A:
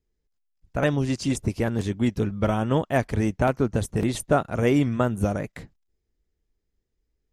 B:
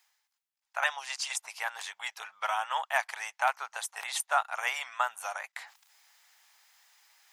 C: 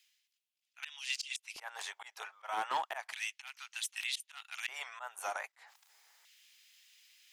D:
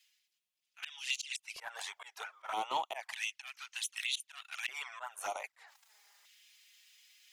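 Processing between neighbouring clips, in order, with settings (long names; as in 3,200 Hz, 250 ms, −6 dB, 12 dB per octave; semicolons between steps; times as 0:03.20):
elliptic high-pass filter 810 Hz, stop band 60 dB; reversed playback; upward compression, threshold −43 dBFS; reversed playback; level +2 dB
volume swells 196 ms; asymmetric clip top −29.5 dBFS; auto-filter high-pass square 0.32 Hz 380–2,800 Hz; level −2.5 dB
flanger swept by the level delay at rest 5.6 ms, full sweep at −34.5 dBFS; level +3.5 dB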